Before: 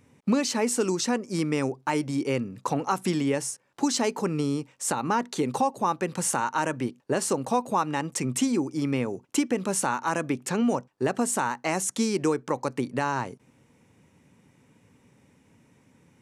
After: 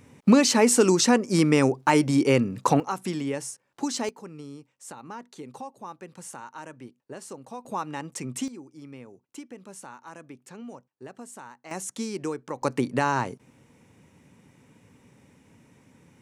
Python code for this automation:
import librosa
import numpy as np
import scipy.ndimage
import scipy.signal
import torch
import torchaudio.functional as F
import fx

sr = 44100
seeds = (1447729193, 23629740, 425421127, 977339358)

y = fx.gain(x, sr, db=fx.steps((0.0, 6.5), (2.8, -4.0), (4.09, -14.5), (7.65, -6.0), (8.48, -17.0), (11.71, -6.5), (12.62, 3.0)))